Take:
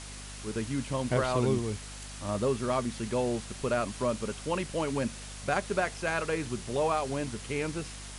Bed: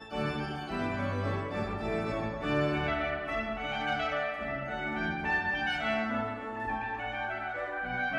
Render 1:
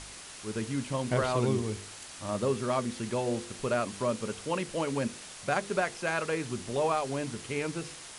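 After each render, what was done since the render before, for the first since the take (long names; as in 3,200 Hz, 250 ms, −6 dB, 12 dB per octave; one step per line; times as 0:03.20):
hum removal 50 Hz, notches 10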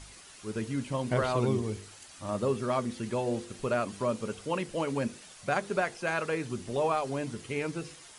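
broadband denoise 8 dB, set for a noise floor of −46 dBFS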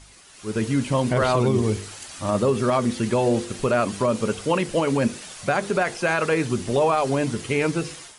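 brickwall limiter −23 dBFS, peak gain reduction 7.5 dB
automatic gain control gain up to 11.5 dB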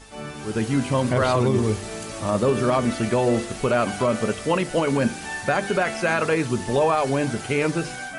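mix in bed −2.5 dB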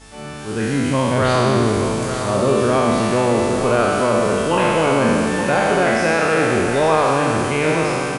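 peak hold with a decay on every bin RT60 2.91 s
single-tap delay 869 ms −8.5 dB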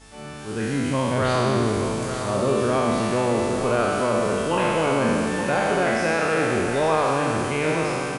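level −5 dB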